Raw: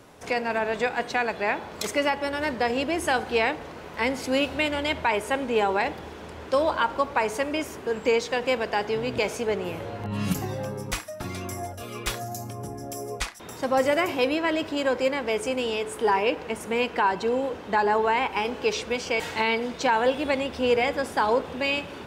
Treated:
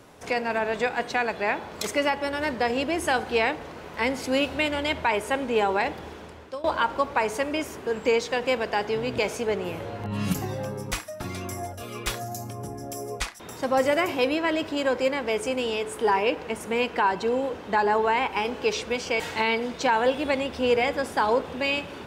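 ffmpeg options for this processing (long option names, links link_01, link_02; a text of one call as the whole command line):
ffmpeg -i in.wav -filter_complex "[0:a]asplit=2[link_01][link_02];[link_01]atrim=end=6.64,asetpts=PTS-STARTPTS,afade=type=out:start_time=6.12:duration=0.52:silence=0.1[link_03];[link_02]atrim=start=6.64,asetpts=PTS-STARTPTS,afade=type=in:duration=0.004:curve=hsin:silence=0.1[link_04];[link_03][link_04]concat=n=2:v=0:a=1" out.wav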